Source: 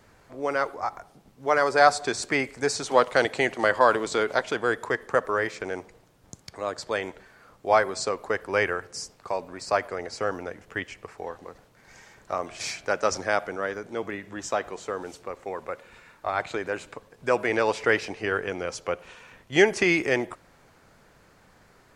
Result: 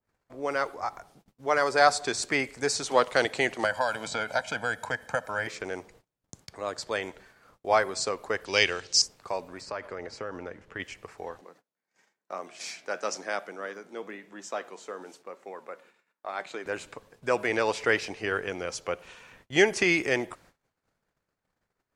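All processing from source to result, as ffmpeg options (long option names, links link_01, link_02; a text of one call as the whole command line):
ffmpeg -i in.wav -filter_complex "[0:a]asettb=1/sr,asplit=3[link_01][link_02][link_03];[link_01]atrim=end=3.644[link_04];[link_02]atrim=start=3.64:end=5.47,asetpts=PTS-STARTPTS,afade=type=in:duration=0.004:curve=qsin,afade=type=out:start_time=1.826:duration=0.004:curve=qsin,acrossover=split=2300|6300[link_05][link_06][link_07];[link_05]acompressor=threshold=-24dB:ratio=4[link_08];[link_06]acompressor=threshold=-42dB:ratio=4[link_09];[link_07]acompressor=threshold=-49dB:ratio=4[link_10];[link_08][link_09][link_10]amix=inputs=3:normalize=0,highpass=59,aecho=1:1:1.3:0.87,atrim=end_sample=80703[link_11];[link_03]atrim=start=5.466[link_12];[link_04][link_11]acrossfade=duration=0.004:curve1=hsin:curve2=qsin[link_13];[link_13][link_12]acrossfade=duration=0.004:curve1=qsin:curve2=hsin,asettb=1/sr,asplit=3[link_14][link_15][link_16];[link_14]atrim=end=8.454[link_17];[link_15]atrim=start=8.45:end=9.02,asetpts=PTS-STARTPTS,afade=type=in:duration=0.004:curve=qsin,afade=type=out:start_time=0.566:duration=0.004:curve=qsin,lowpass=frequency=6800:width=0.5412,lowpass=frequency=6800:width=1.3066,highshelf=frequency=2300:width_type=q:width=1.5:gain=13.5[link_18];[link_16]atrim=start=9.016[link_19];[link_17][link_18]acrossfade=duration=0.004:curve1=hsin:curve2=qsin[link_20];[link_20][link_19]acrossfade=duration=0.004:curve1=qsin:curve2=hsin,asettb=1/sr,asplit=3[link_21][link_22][link_23];[link_21]atrim=end=9.614[link_24];[link_22]atrim=start=9.61:end=10.8,asetpts=PTS-STARTPTS,afade=type=in:duration=0.004:curve=qsin,afade=type=out:start_time=1.186:duration=0.004:curve=qsin,aemphasis=mode=reproduction:type=50fm,bandreject=frequency=720:width=9.4,acompressor=threshold=-29dB:ratio=3:attack=3.2:release=140:knee=1:detection=peak[link_25];[link_23]atrim=start=10.796[link_26];[link_24][link_25]acrossfade=duration=0.004:curve1=hsin:curve2=qsin[link_27];[link_27][link_26]acrossfade=duration=0.004:curve1=qsin:curve2=hsin,asettb=1/sr,asplit=3[link_28][link_29][link_30];[link_28]atrim=end=11.414[link_31];[link_29]atrim=start=11.41:end=16.66,asetpts=PTS-STARTPTS,afade=type=in:duration=0.004:curve=qsin,afade=type=out:start_time=5.246:duration=0.004:curve=qsin,highpass=frequency=180:width=0.5412,highpass=frequency=180:width=1.3066,flanger=delay=5.1:depth=6.4:regen=82:speed=1:shape=sinusoidal[link_32];[link_30]atrim=start=16.656[link_33];[link_31][link_32]acrossfade=duration=0.004:curve1=hsin:curve2=qsin[link_34];[link_34][link_33]acrossfade=duration=0.004:curve1=qsin:curve2=hsin,agate=range=-26dB:threshold=-53dB:ratio=16:detection=peak,adynamicequalizer=threshold=0.0141:dfrequency=2200:dqfactor=0.7:tfrequency=2200:tqfactor=0.7:attack=5:release=100:ratio=0.375:range=2:mode=boostabove:tftype=highshelf,volume=-3dB" out.wav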